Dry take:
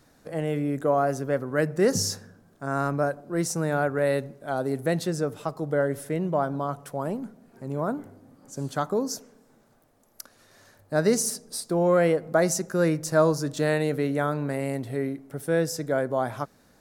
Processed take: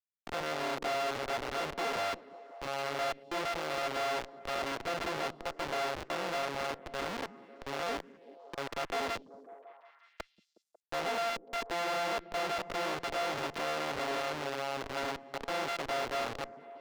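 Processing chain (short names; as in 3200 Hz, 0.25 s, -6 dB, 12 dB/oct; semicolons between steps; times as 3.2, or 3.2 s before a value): sample sorter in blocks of 64 samples; Schmitt trigger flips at -32 dBFS; three-band isolator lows -17 dB, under 360 Hz, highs -13 dB, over 5700 Hz; on a send: delay with a stepping band-pass 0.182 s, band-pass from 200 Hz, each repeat 0.7 oct, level -10.5 dB; on the sum: gain -3.5 dB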